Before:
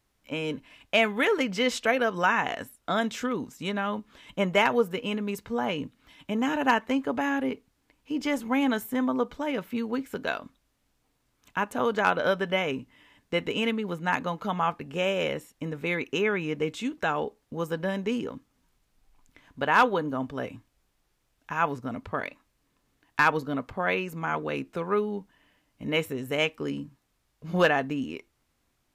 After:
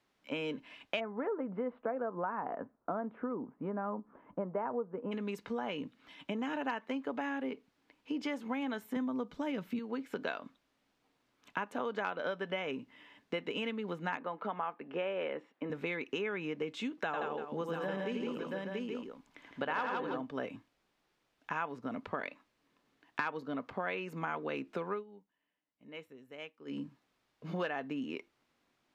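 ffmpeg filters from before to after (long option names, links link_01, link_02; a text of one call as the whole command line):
ffmpeg -i in.wav -filter_complex "[0:a]asplit=3[link_01][link_02][link_03];[link_01]afade=type=out:start_time=0.99:duration=0.02[link_04];[link_02]lowpass=frequency=1200:width=0.5412,lowpass=frequency=1200:width=1.3066,afade=type=in:start_time=0.99:duration=0.02,afade=type=out:start_time=5.11:duration=0.02[link_05];[link_03]afade=type=in:start_time=5.11:duration=0.02[link_06];[link_04][link_05][link_06]amix=inputs=3:normalize=0,asettb=1/sr,asplit=3[link_07][link_08][link_09];[link_07]atrim=end=8.964[link_10];[link_08]atrim=start=8.96:end=9.79,asetpts=PTS-STARTPTS,afade=type=in:duration=0.004:curve=qsin,afade=type=out:start_time=0.826:duration=0.004:curve=qsin,bass=frequency=250:gain=13,treble=frequency=4000:gain=7[link_11];[link_09]atrim=start=9.786[link_12];[link_10][link_11]acrossfade=duration=0.004:curve1=hsin:curve2=qsin[link_13];[link_13][link_12]acrossfade=duration=0.004:curve1=qsin:curve2=hsin,asettb=1/sr,asplit=3[link_14][link_15][link_16];[link_14]atrim=end=14.174[link_17];[link_15]atrim=start=14.17:end=15.7,asetpts=PTS-STARTPTS,afade=type=in:duration=0.004:curve=qsin,afade=type=out:start_time=1.526:duration=0.004:curve=qsin,highpass=250,lowpass=2200[link_18];[link_16]atrim=start=15.696[link_19];[link_17][link_18]acrossfade=duration=0.004:curve1=hsin:curve2=qsin[link_20];[link_20][link_19]acrossfade=duration=0.004:curve1=qsin:curve2=hsin,asettb=1/sr,asplit=3[link_21][link_22][link_23];[link_21]atrim=end=17.054[link_24];[link_22]atrim=start=17.05:end=20.21,asetpts=PTS-STARTPTS,afade=type=in:duration=0.004:curve=qsin,afade=type=out:start_time=3.156:duration=0.004:curve=qsin,aecho=1:1:83|162|323|682|828:0.631|0.631|0.158|0.398|0.237,atrim=end_sample=139356[link_25];[link_23]atrim=start=20.206[link_26];[link_24][link_25]acrossfade=duration=0.004:curve1=hsin:curve2=qsin[link_27];[link_27][link_26]acrossfade=duration=0.004:curve1=qsin:curve2=hsin,asplit=3[link_28][link_29][link_30];[link_28]atrim=end=25.04,asetpts=PTS-STARTPTS,afade=type=out:start_time=24.86:duration=0.18:silence=0.0944061[link_31];[link_29]atrim=start=25.04:end=26.65,asetpts=PTS-STARTPTS,volume=-20.5dB[link_32];[link_30]atrim=start=26.65,asetpts=PTS-STARTPTS,afade=type=in:duration=0.18:silence=0.0944061[link_33];[link_31][link_32][link_33]concat=n=3:v=0:a=1,acompressor=threshold=-33dB:ratio=6,acrossover=split=160 5200:gain=0.126 1 0.224[link_34][link_35][link_36];[link_34][link_35][link_36]amix=inputs=3:normalize=0" out.wav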